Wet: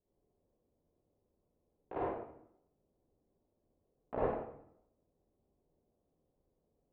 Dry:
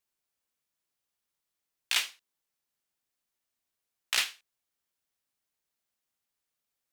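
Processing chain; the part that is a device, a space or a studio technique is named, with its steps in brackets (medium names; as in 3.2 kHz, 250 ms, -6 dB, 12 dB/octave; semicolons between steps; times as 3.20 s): next room (low-pass 570 Hz 24 dB/octave; reverberation RT60 0.75 s, pre-delay 45 ms, DRR -7.5 dB); trim +13.5 dB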